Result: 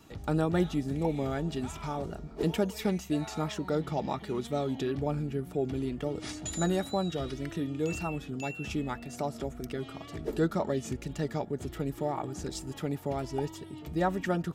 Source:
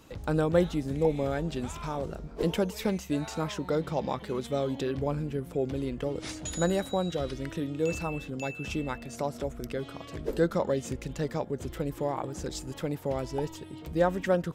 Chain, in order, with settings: wow and flutter 55 cents; notch comb 520 Hz

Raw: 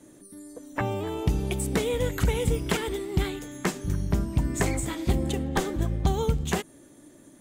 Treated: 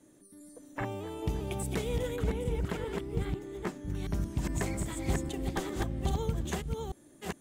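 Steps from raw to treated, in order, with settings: reverse delay 0.407 s, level -2 dB; 2.16–3.95 high shelf 2200 Hz -10.5 dB; gain -8.5 dB

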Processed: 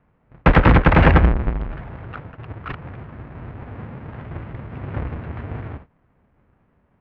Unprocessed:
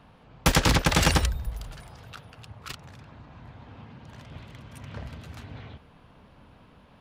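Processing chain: half-waves squared off; LPF 2200 Hz 24 dB/oct; gate -44 dBFS, range -19 dB; gain +6.5 dB

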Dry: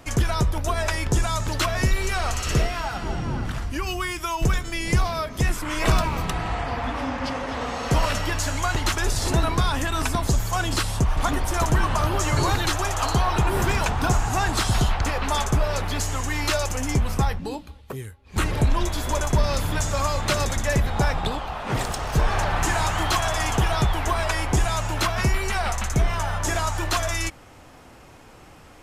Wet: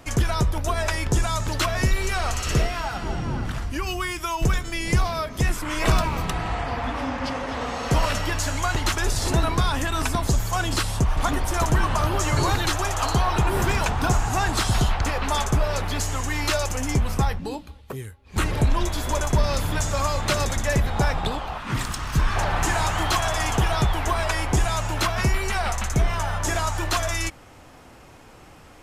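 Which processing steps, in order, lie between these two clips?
21.58–22.36 band shelf 570 Hz -10.5 dB 1.3 oct

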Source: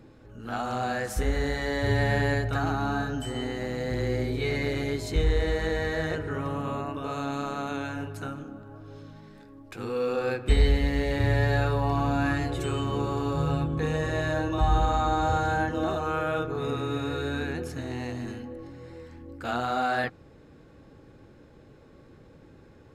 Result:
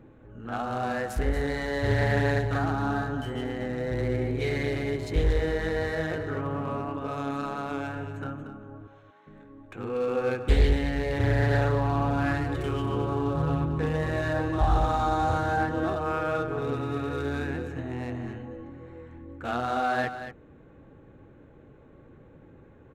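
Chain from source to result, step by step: Wiener smoothing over 9 samples; 8.87–9.27 HPF 730 Hz 12 dB/oct; on a send: echo 0.233 s -10.5 dB; on the sum: Doppler distortion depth 0.34 ms

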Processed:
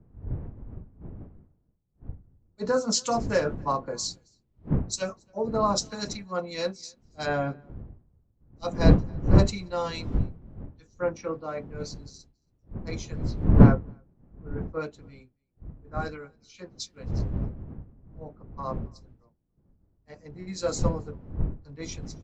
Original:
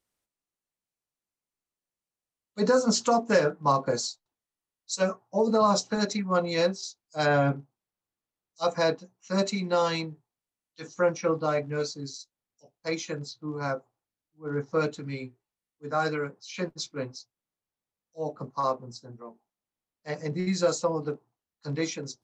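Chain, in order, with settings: wind noise 190 Hz -28 dBFS; echo 0.278 s -23.5 dB; three-band expander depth 100%; gain -7 dB

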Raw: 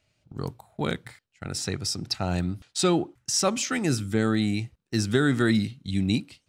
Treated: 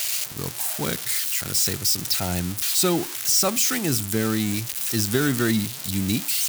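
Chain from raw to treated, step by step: switching spikes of -15.5 dBFS

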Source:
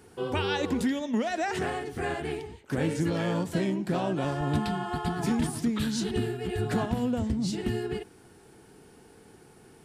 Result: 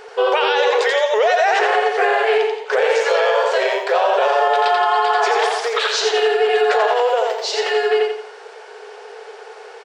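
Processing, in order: LPF 6600 Hz 24 dB/oct; high shelf 5200 Hz -10.5 dB; short-mantissa float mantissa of 8-bit; brick-wall FIR high-pass 400 Hz; feedback echo 86 ms, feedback 36%, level -4 dB; maximiser +26.5 dB; gain -6.5 dB

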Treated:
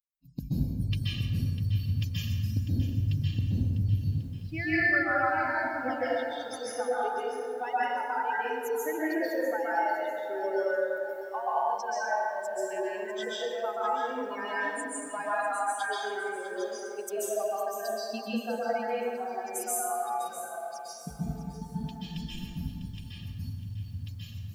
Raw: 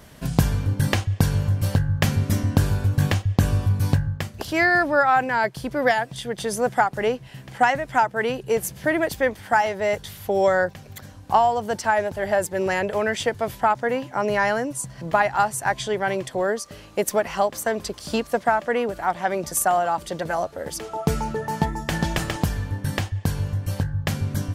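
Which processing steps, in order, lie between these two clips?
per-bin expansion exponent 3; de-hum 50.05 Hz, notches 22; compressor 2.5:1, threshold -28 dBFS, peak gain reduction 8.5 dB; reverb RT60 1.9 s, pre-delay 0.12 s, DRR -9.5 dB; lo-fi delay 0.649 s, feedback 35%, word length 8-bit, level -12 dB; gain -7 dB

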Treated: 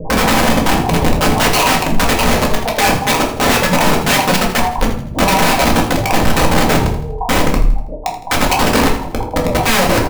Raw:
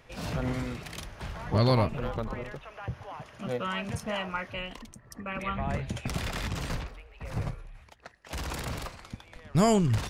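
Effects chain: random spectral dropouts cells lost 39%; de-hum 119.5 Hz, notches 9; reverb removal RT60 0.86 s; steep low-pass 1000 Hz 96 dB/oct; comb 6.5 ms, depth 42%; compressor 12:1, threshold -39 dBFS, peak gain reduction 19.5 dB; wrapped overs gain 41 dB; feedback echo 81 ms, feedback 41%, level -12 dB; shoebox room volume 290 m³, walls furnished, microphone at 2 m; maximiser +31.5 dB; gain -1 dB

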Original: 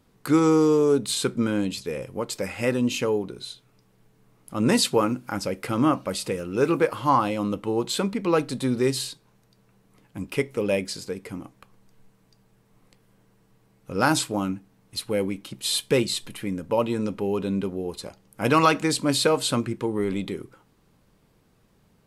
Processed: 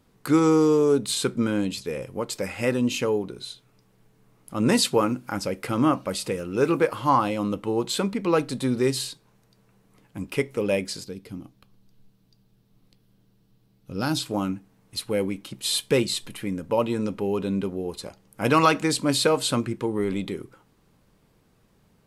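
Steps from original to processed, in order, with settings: 11.04–14.26 ten-band EQ 500 Hz -6 dB, 1000 Hz -8 dB, 2000 Hz -9 dB, 4000 Hz +4 dB, 8000 Hz -9 dB

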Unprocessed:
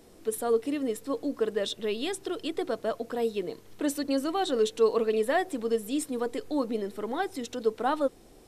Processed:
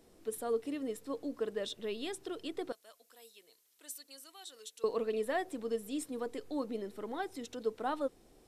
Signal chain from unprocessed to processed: 2.72–4.84 differentiator; gain -8 dB

